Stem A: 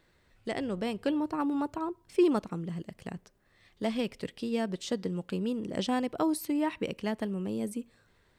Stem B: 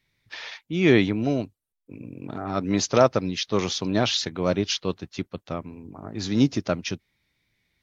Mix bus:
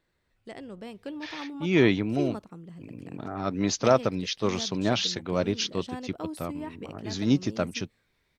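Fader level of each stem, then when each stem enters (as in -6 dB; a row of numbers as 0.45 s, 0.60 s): -8.5 dB, -3.0 dB; 0.00 s, 0.90 s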